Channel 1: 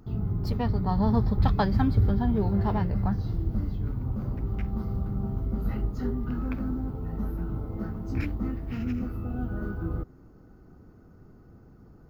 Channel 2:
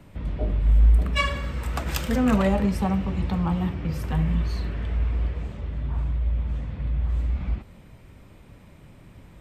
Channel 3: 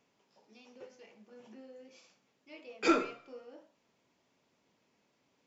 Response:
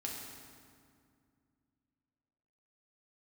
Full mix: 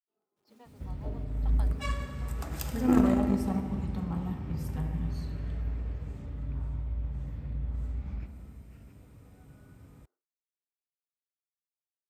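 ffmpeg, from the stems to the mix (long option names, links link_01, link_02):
-filter_complex "[0:a]highpass=frequency=410:width=0.5412,highpass=frequency=410:width=1.3066,volume=-16.5dB[link_01];[1:a]equalizer=frequency=3100:width_type=o:width=1.4:gain=-6,adelay=650,volume=3dB,asplit=2[link_02][link_03];[link_03]volume=-10dB[link_04];[2:a]lowpass=1200,lowshelf=frequency=380:width_type=q:width=1.5:gain=8,acrusher=bits=9:mix=0:aa=0.000001,volume=1dB,asplit=2[link_05][link_06];[link_06]volume=-9.5dB[link_07];[link_02][link_05]amix=inputs=2:normalize=0,equalizer=frequency=870:width=0.36:gain=-14,acompressor=threshold=-27dB:ratio=3,volume=0dB[link_08];[3:a]atrim=start_sample=2205[link_09];[link_04][link_07]amix=inputs=2:normalize=0[link_10];[link_10][link_09]afir=irnorm=-1:irlink=0[link_11];[link_01][link_08][link_11]amix=inputs=3:normalize=0,highpass=64,agate=range=-33dB:threshold=-55dB:ratio=3:detection=peak,aeval=exprs='0.335*(cos(1*acos(clip(val(0)/0.335,-1,1)))-cos(1*PI/2))+0.0596*(cos(3*acos(clip(val(0)/0.335,-1,1)))-cos(3*PI/2))':channel_layout=same"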